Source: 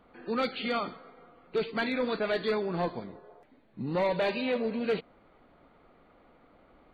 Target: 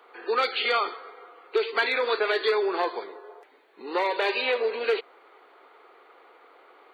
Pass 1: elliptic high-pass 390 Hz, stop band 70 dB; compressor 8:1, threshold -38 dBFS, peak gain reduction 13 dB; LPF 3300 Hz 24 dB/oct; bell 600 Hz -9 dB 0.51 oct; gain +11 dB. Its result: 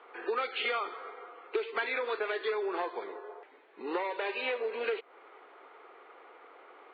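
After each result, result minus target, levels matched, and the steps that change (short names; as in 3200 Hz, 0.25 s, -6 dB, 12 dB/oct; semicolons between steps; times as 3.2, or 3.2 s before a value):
compressor: peak gain reduction +9 dB; 4000 Hz band -2.0 dB
change: compressor 8:1, threshold -28 dBFS, peak gain reduction 4.5 dB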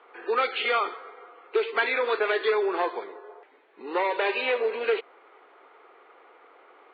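4000 Hz band -3.5 dB
remove: LPF 3300 Hz 24 dB/oct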